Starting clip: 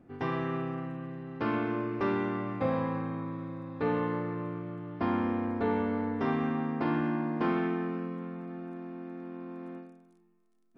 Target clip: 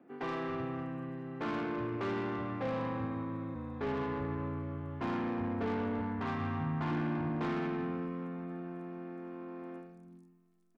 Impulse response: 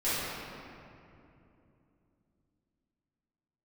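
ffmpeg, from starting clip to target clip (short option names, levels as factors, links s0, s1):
-filter_complex "[0:a]asettb=1/sr,asplit=3[s0][s1][s2];[s0]atrim=end=6.014[s3];[s1]atrim=start=6.01:end=6.91,asetpts=PTS-STARTPTS,afade=t=in:d=0.004:c=qsin,afade=t=out:st=0.896:d=0.004:c=qsin,equalizer=f=125:t=o:w=1:g=10,equalizer=f=250:t=o:w=1:g=-6,equalizer=f=500:t=o:w=1:g=-8,equalizer=f=1000:t=o:w=1:g=3,equalizer=f=4000:t=o:w=1:g=-4[s4];[s2]atrim=start=6.906[s5];[s3][s4]acrossfade=d=0.004:c1=hsin:c2=qsin[s6];[s6][s5]acrossfade=d=0.004:c1=qsin:c2=hsin,acrossover=split=190|4200[s7][s8][s9];[s9]adelay=80[s10];[s7]adelay=380[s11];[s11][s8][s10]amix=inputs=3:normalize=0,asplit=3[s12][s13][s14];[s12]afade=t=out:st=3.54:d=0.02[s15];[s13]afreqshift=-28,afade=t=in:st=3.54:d=0.02,afade=t=out:st=5:d=0.02[s16];[s14]afade=t=in:st=5:d=0.02[s17];[s15][s16][s17]amix=inputs=3:normalize=0,acrossover=split=180[s18][s19];[s19]asoftclip=type=tanh:threshold=0.0237[s20];[s18][s20]amix=inputs=2:normalize=0"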